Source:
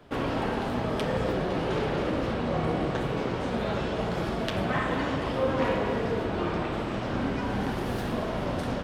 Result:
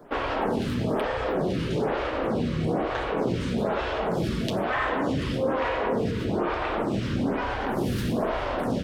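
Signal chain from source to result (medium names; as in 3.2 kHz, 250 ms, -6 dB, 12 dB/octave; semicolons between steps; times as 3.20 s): in parallel at -0.5 dB: compressor with a negative ratio -30 dBFS; on the sum: lamp-driven phase shifter 1.1 Hz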